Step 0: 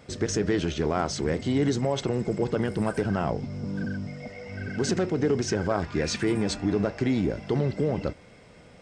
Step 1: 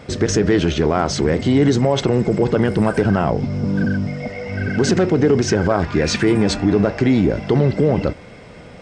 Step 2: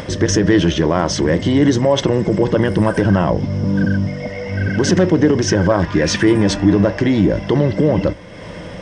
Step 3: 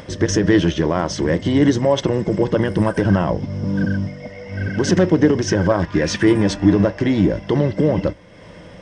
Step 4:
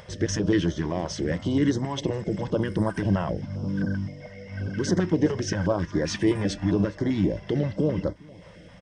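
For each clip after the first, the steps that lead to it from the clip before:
high shelf 6200 Hz -9 dB; in parallel at +3 dB: limiter -21 dBFS, peak gain reduction 10 dB; on the sum: gain +4.5 dB
ripple EQ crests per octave 1.2, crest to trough 7 dB; upward compressor, threshold -24 dBFS; gain +1.5 dB
upward expander 1.5:1, over -26 dBFS
echo 0.41 s -22.5 dB; stepped notch 7.6 Hz 280–2600 Hz; gain -7 dB

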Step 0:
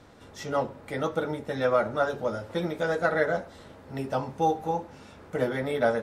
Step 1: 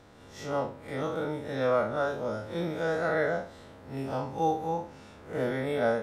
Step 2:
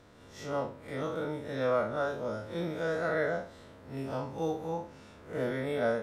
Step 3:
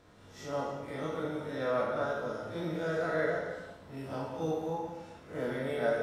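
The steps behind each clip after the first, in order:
time blur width 98 ms
notch 800 Hz, Q 12; gain -2.5 dB
non-linear reverb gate 0.44 s falling, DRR -1 dB; gain -4 dB

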